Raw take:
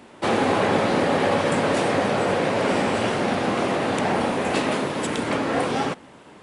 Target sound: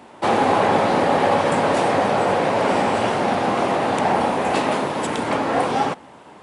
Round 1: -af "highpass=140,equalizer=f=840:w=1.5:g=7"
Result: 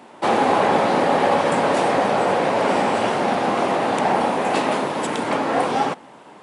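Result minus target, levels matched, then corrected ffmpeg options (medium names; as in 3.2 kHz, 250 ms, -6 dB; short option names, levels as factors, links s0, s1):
125 Hz band -2.5 dB
-af "highpass=38,equalizer=f=840:w=1.5:g=7"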